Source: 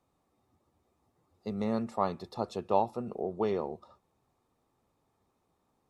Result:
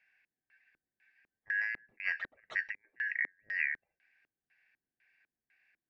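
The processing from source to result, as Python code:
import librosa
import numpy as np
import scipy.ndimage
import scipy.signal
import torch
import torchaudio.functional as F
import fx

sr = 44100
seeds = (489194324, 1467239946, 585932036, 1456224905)

y = fx.band_shuffle(x, sr, order='3142')
y = fx.over_compress(y, sr, threshold_db=-33.0, ratio=-0.5)
y = fx.filter_lfo_lowpass(y, sr, shape='square', hz=2.0, low_hz=320.0, high_hz=3000.0, q=1.3)
y = y * 10.0 ** (-1.5 / 20.0)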